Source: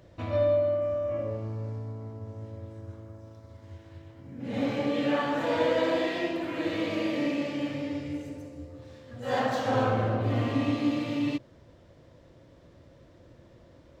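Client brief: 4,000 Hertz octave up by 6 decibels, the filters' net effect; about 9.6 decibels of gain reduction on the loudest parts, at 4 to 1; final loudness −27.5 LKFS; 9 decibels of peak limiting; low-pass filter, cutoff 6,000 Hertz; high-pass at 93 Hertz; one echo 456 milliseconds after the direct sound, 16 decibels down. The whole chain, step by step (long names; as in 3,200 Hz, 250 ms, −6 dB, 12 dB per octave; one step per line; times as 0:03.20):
high-pass filter 93 Hz
low-pass filter 6,000 Hz
parametric band 4,000 Hz +8.5 dB
downward compressor 4 to 1, threshold −33 dBFS
brickwall limiter −32 dBFS
single-tap delay 456 ms −16 dB
level +13 dB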